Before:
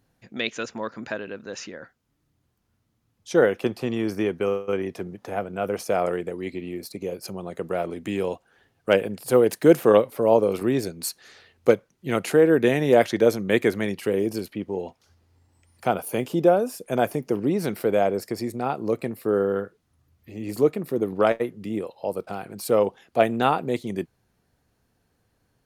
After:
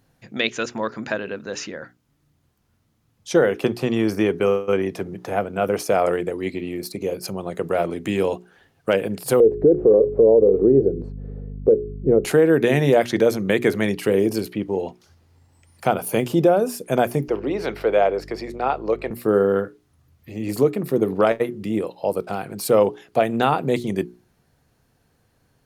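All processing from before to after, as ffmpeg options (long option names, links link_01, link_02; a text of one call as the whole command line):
ffmpeg -i in.wav -filter_complex "[0:a]asettb=1/sr,asplit=3[link_01][link_02][link_03];[link_01]atrim=end=9.404[link_04];[link_02]atrim=start=9.4:end=12.25,asetpts=PTS-STARTPTS,afade=type=in:duration=0.004:curve=qsin,afade=type=out:start_time=2.846:duration=0.004:curve=qsin,lowpass=frequency=440:width_type=q:width=4.8,aeval=exprs='val(0)+0.0141*(sin(2*PI*50*n/s)+sin(2*PI*2*50*n/s)/2+sin(2*PI*3*50*n/s)/3+sin(2*PI*4*50*n/s)/4+sin(2*PI*5*50*n/s)/5)':channel_layout=same[link_05];[link_03]atrim=start=12.246[link_06];[link_04][link_05]acrossfade=duration=0.004:curve1=hsin:curve2=qsin[link_07];[link_07][link_06]acrossfade=duration=0.004:curve1=qsin:curve2=hsin,asettb=1/sr,asplit=3[link_08][link_09][link_10];[link_08]atrim=end=17.284[link_11];[link_09]atrim=start=17.28:end=19.11,asetpts=PTS-STARTPTS,afade=type=in:duration=0.004:curve=qsin,afade=type=out:start_time=1.826:duration=0.004:curve=qsin,acrossover=split=340 4900:gain=0.126 1 0.1[link_12][link_13][link_14];[link_12][link_13][link_14]amix=inputs=3:normalize=0,aeval=exprs='val(0)+0.00501*(sin(2*PI*50*n/s)+sin(2*PI*2*50*n/s)/2+sin(2*PI*3*50*n/s)/3+sin(2*PI*4*50*n/s)/4+sin(2*PI*5*50*n/s)/5)':channel_layout=same[link_15];[link_10]atrim=start=19.106[link_16];[link_11][link_15]acrossfade=duration=0.004:curve1=hsin:curve2=qsin[link_17];[link_17][link_16]acrossfade=duration=0.004:curve1=qsin:curve2=hsin,equalizer=frequency=140:width=7.2:gain=6,bandreject=frequency=60:width_type=h:width=6,bandreject=frequency=120:width_type=h:width=6,bandreject=frequency=180:width_type=h:width=6,bandreject=frequency=240:width_type=h:width=6,bandreject=frequency=300:width_type=h:width=6,bandreject=frequency=360:width_type=h:width=6,bandreject=frequency=420:width_type=h:width=6,alimiter=limit=-12dB:level=0:latency=1:release=184,volume=5.5dB" out.wav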